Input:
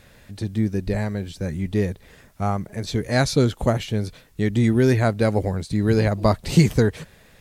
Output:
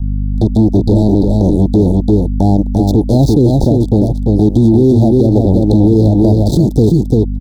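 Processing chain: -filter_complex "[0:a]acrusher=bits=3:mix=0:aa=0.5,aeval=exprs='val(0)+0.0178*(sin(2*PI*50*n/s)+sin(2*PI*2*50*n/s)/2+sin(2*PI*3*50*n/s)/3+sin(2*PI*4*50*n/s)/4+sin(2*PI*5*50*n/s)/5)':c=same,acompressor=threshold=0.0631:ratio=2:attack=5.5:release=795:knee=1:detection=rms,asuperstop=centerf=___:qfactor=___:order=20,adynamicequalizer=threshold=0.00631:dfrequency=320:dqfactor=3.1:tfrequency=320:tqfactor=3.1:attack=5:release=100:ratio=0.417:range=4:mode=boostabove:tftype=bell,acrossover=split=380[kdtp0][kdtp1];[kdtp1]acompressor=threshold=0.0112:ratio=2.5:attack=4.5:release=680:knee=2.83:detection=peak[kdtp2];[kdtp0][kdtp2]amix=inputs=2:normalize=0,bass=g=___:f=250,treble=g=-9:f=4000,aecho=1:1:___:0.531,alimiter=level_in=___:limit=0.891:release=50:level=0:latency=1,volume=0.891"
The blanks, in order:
1800, 0.68, -1, 344, 14.1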